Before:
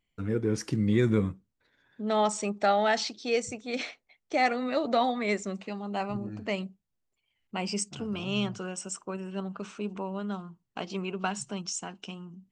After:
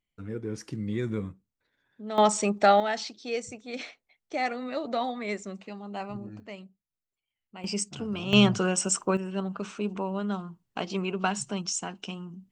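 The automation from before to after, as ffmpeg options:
-af "asetnsamples=n=441:p=0,asendcmd='2.18 volume volume 5dB;2.8 volume volume -4dB;6.4 volume volume -11dB;7.64 volume volume 1dB;8.33 volume volume 10.5dB;9.17 volume volume 3.5dB',volume=0.473"

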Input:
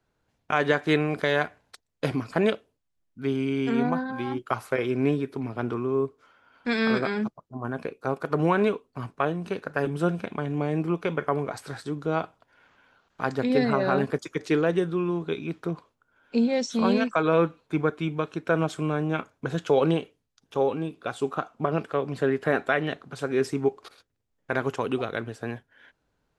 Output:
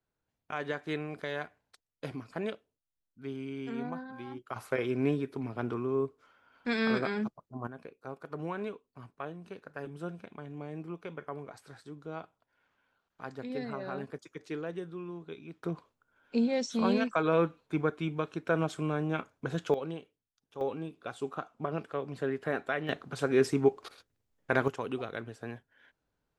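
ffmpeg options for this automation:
-af "asetnsamples=n=441:p=0,asendcmd='4.56 volume volume -5dB;7.67 volume volume -14.5dB;15.63 volume volume -5dB;19.74 volume volume -15.5dB;20.61 volume volume -8.5dB;22.89 volume volume -0.5dB;24.68 volume volume -8dB',volume=0.237"

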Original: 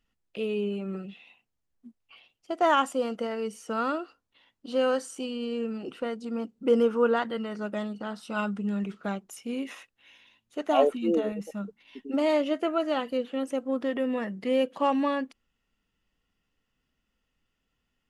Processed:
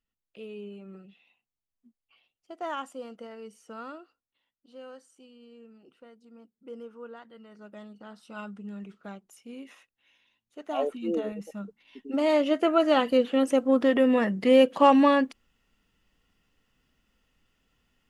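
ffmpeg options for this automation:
-af "volume=5.96,afade=t=out:st=3.7:d=1.02:silence=0.375837,afade=t=in:st=7.27:d=0.92:silence=0.316228,afade=t=in:st=10.6:d=0.6:silence=0.446684,afade=t=in:st=12:d=1.09:silence=0.316228"

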